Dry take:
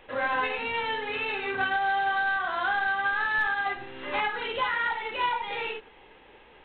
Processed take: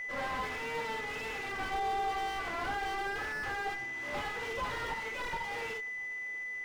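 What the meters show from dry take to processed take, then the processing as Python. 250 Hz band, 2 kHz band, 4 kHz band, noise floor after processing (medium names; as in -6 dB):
-3.0 dB, -8.5 dB, -7.5 dB, -40 dBFS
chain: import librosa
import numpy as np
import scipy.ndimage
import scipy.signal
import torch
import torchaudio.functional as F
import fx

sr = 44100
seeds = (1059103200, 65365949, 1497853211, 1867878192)

y = fx.lower_of_two(x, sr, delay_ms=8.7)
y = y + 10.0 ** (-32.0 / 20.0) * np.sin(2.0 * np.pi * 2000.0 * np.arange(len(y)) / sr)
y = fx.slew_limit(y, sr, full_power_hz=44.0)
y = y * librosa.db_to_amplitude(-4.5)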